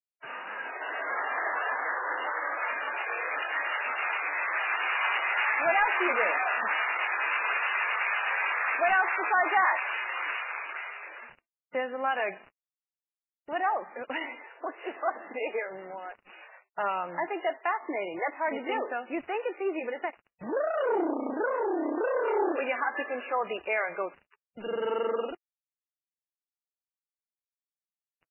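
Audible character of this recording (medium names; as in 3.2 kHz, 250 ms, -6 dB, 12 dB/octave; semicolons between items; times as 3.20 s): a quantiser's noise floor 8-bit, dither none; MP3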